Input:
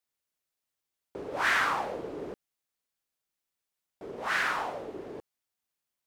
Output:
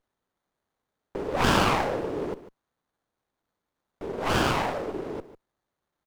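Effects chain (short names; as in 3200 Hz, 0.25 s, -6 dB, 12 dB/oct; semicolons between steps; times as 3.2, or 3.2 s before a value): echo 0.148 s -15 dB; running maximum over 17 samples; gain +8 dB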